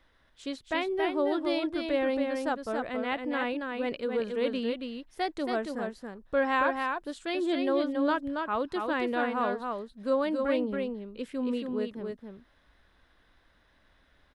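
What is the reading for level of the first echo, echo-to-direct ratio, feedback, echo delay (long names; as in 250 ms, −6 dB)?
−4.5 dB, −4.5 dB, repeats not evenly spaced, 277 ms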